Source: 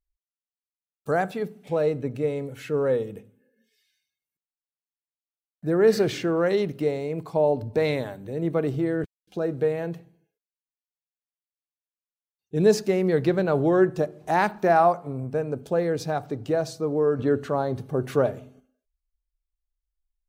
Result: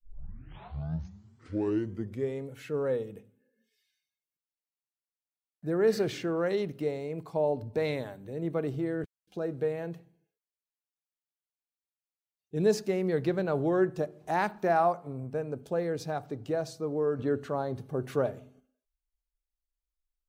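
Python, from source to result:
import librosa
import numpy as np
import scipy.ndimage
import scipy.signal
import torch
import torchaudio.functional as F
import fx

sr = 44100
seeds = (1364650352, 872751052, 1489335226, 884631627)

y = fx.tape_start_head(x, sr, length_s=2.49)
y = y * librosa.db_to_amplitude(-6.5)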